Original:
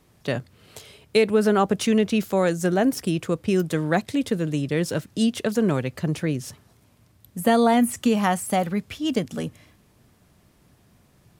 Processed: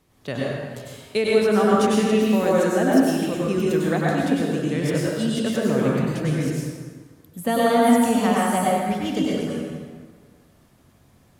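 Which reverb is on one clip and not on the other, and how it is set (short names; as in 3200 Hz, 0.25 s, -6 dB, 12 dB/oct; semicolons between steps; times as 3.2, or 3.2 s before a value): plate-style reverb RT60 1.6 s, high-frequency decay 0.65×, pre-delay 85 ms, DRR -5.5 dB; gain -4.5 dB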